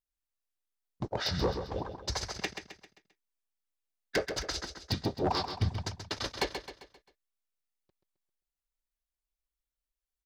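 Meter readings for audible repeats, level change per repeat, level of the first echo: 4, −7.0 dB, −8.0 dB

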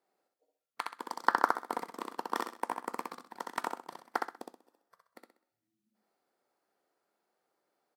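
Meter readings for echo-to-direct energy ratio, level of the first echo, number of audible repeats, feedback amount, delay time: −3.0 dB, −3.5 dB, 4, 32%, 64 ms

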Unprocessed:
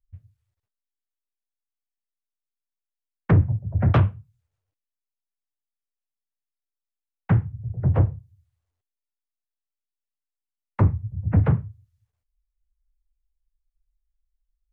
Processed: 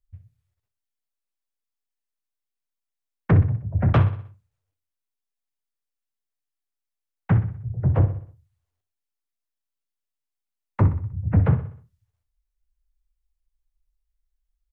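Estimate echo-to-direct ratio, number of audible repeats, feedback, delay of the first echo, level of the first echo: −11.0 dB, 4, 46%, 62 ms, −12.0 dB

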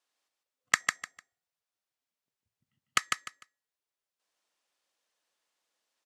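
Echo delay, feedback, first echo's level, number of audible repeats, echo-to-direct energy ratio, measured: 150 ms, 23%, −4.0 dB, 3, −4.0 dB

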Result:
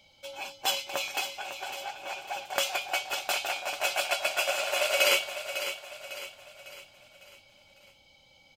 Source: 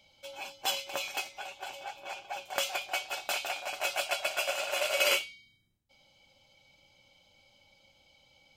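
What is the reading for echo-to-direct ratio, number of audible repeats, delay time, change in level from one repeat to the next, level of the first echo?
−9.0 dB, 4, 552 ms, −7.0 dB, −10.0 dB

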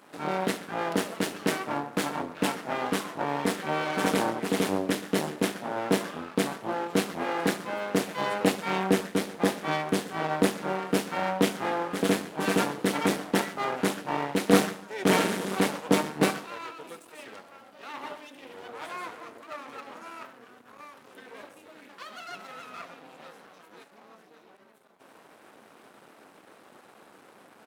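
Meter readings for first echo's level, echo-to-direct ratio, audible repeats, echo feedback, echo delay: −18.0 dB, −17.0 dB, 3, 45%, 71 ms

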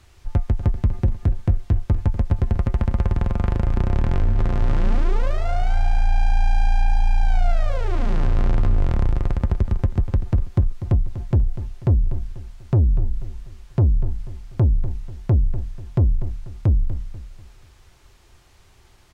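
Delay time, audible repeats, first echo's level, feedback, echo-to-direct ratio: 244 ms, 3, −12.5 dB, 39%, −12.0 dB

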